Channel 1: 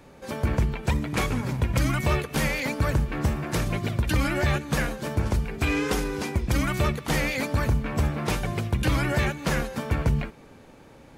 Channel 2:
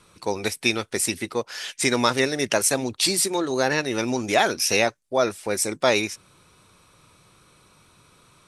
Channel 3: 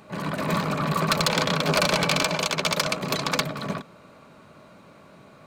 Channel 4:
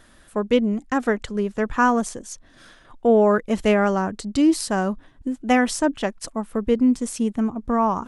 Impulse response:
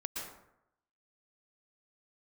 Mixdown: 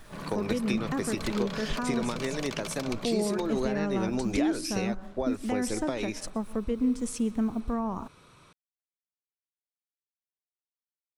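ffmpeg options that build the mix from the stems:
-filter_complex "[1:a]adelay=50,volume=1.06[s0];[2:a]volume=0.299,asplit=2[s1][s2];[s2]volume=0.178[s3];[3:a]lowshelf=f=74:g=9.5,acrusher=bits=8:mix=0:aa=0.5,volume=0.668,asplit=2[s4][s5];[s5]volume=0.106[s6];[s1][s4]amix=inputs=2:normalize=0,alimiter=limit=0.0891:level=0:latency=1:release=317,volume=1[s7];[s0]highshelf=f=6400:g=-10.5,acompressor=threshold=0.0562:ratio=6,volume=1[s8];[4:a]atrim=start_sample=2205[s9];[s3][s6]amix=inputs=2:normalize=0[s10];[s10][s9]afir=irnorm=-1:irlink=0[s11];[s7][s8][s11]amix=inputs=3:normalize=0,acrossover=split=430[s12][s13];[s13]acompressor=threshold=0.0224:ratio=6[s14];[s12][s14]amix=inputs=2:normalize=0"

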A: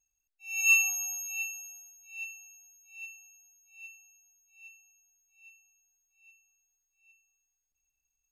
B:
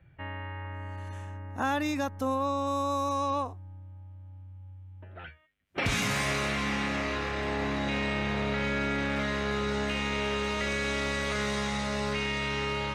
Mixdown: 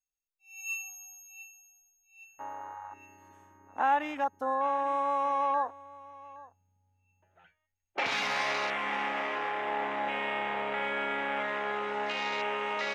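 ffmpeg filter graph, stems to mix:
-filter_complex "[0:a]asubboost=boost=6:cutoff=53,volume=0.2[s0];[1:a]afwtdn=0.0141,highpass=460,adelay=2200,volume=0.944,asplit=2[s1][s2];[s2]volume=0.1,aecho=0:1:819:1[s3];[s0][s1][s3]amix=inputs=3:normalize=0,equalizer=f=840:w=4.5:g=8"

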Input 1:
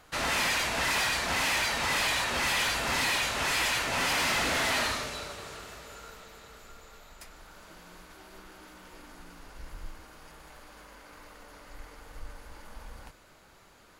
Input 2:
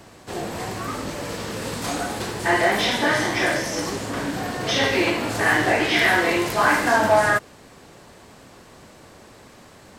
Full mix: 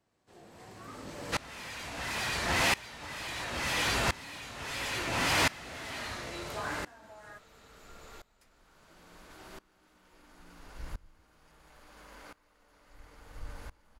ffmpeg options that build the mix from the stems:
-filter_complex "[0:a]adynamicequalizer=threshold=0.002:dfrequency=100:dqfactor=0.72:tfrequency=100:tqfactor=0.72:attack=5:release=100:ratio=0.375:range=3.5:mode=boostabove:tftype=bell,adelay=1200,volume=1.33[s0];[1:a]acompressor=threshold=0.0794:ratio=6,volume=0.355[s1];[s0][s1]amix=inputs=2:normalize=0,highshelf=f=12000:g=-4.5,aeval=exprs='val(0)*pow(10,-23*if(lt(mod(-0.73*n/s,1),2*abs(-0.73)/1000),1-mod(-0.73*n/s,1)/(2*abs(-0.73)/1000),(mod(-0.73*n/s,1)-2*abs(-0.73)/1000)/(1-2*abs(-0.73)/1000))/20)':c=same"

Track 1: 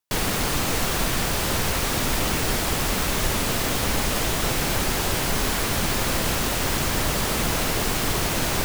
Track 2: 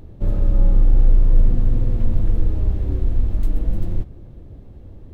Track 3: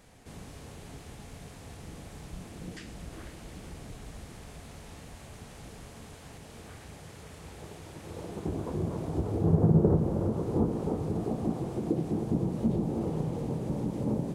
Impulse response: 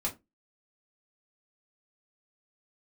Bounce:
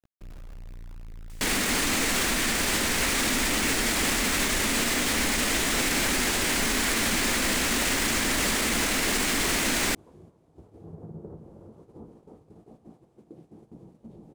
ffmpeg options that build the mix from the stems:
-filter_complex "[0:a]equalizer=f=125:t=o:w=1:g=-9,equalizer=f=250:t=o:w=1:g=10,equalizer=f=2000:t=o:w=1:g=9,equalizer=f=4000:t=o:w=1:g=3,equalizer=f=8000:t=o:w=1:g=8,acompressor=mode=upward:threshold=0.01:ratio=2.5,adelay=1300,volume=1.06[s0];[1:a]acrusher=bits=4:mix=0:aa=0.000001,asoftclip=type=tanh:threshold=0.0891,volume=0.133[s1];[2:a]equalizer=f=110:w=0.63:g=-3.5,adelay=1400,volume=0.133[s2];[s0][s1][s2]amix=inputs=3:normalize=0,agate=range=0.355:threshold=0.00316:ratio=16:detection=peak,alimiter=limit=0.158:level=0:latency=1:release=49"

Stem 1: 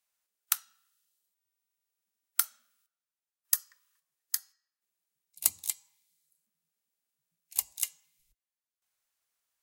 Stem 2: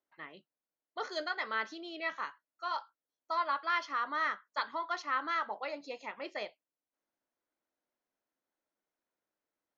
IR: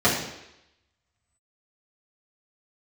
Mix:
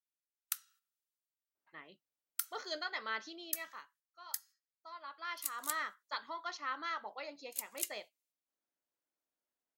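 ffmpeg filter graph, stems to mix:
-filter_complex "[0:a]agate=range=0.251:threshold=0.00126:ratio=16:detection=peak,highpass=f=1200:w=0.5412,highpass=f=1200:w=1.3066,volume=0.473[s0];[1:a]acontrast=31,adynamicequalizer=threshold=0.00708:dfrequency=2800:dqfactor=0.7:tfrequency=2800:tqfactor=0.7:attack=5:release=100:ratio=0.375:range=3.5:mode=boostabove:tftype=highshelf,adelay=1550,volume=1.06,afade=t=out:st=3.3:d=0.66:silence=0.237137,afade=t=in:st=4.99:d=0.69:silence=0.281838[s1];[s0][s1]amix=inputs=2:normalize=0,alimiter=limit=0.141:level=0:latency=1:release=179"

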